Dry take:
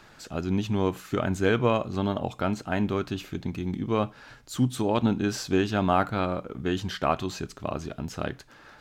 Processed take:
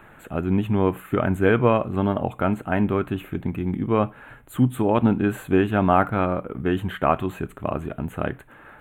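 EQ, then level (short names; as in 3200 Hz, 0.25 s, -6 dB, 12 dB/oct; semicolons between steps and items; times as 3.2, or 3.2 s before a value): Butterworth band-stop 5200 Hz, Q 0.7; +5.0 dB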